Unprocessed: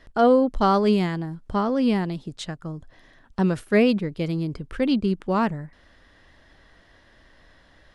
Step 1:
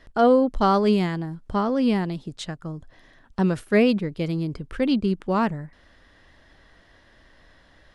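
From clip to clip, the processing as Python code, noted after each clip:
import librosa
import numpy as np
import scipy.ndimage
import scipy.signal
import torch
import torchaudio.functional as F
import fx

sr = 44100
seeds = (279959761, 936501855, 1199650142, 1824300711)

y = x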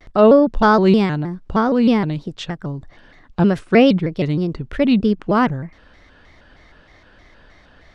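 y = fx.air_absorb(x, sr, metres=75.0)
y = fx.vibrato_shape(y, sr, shape='square', rate_hz=3.2, depth_cents=160.0)
y = y * librosa.db_to_amplitude(6.5)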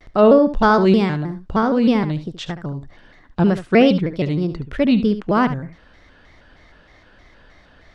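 y = x + 10.0 ** (-12.0 / 20.0) * np.pad(x, (int(72 * sr / 1000.0), 0))[:len(x)]
y = y * librosa.db_to_amplitude(-1.0)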